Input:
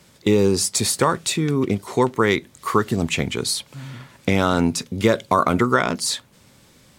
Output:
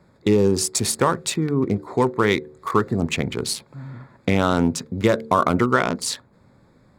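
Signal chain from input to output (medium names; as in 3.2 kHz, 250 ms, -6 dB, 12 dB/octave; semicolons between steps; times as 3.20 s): local Wiener filter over 15 samples; de-hum 74.82 Hz, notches 7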